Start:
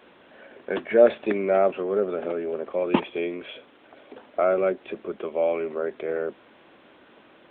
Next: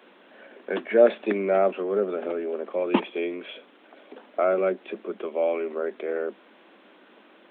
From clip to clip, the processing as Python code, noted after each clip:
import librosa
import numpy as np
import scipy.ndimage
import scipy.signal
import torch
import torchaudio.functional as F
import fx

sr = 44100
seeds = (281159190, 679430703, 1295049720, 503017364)

y = scipy.signal.sosfilt(scipy.signal.cheby1(5, 1.0, 190.0, 'highpass', fs=sr, output='sos'), x)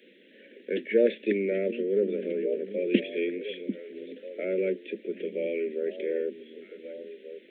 y = scipy.signal.sosfilt(scipy.signal.ellip(3, 1.0, 60, [500.0, 1900.0], 'bandstop', fs=sr, output='sos'), x)
y = fx.echo_stepped(y, sr, ms=742, hz=220.0, octaves=1.4, feedback_pct=70, wet_db=-7)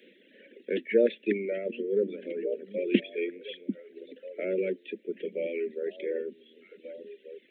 y = fx.dereverb_blind(x, sr, rt60_s=1.9)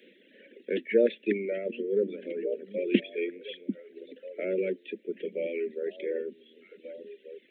y = x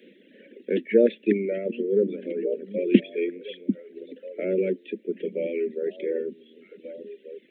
y = fx.low_shelf(x, sr, hz=350.0, db=11.5)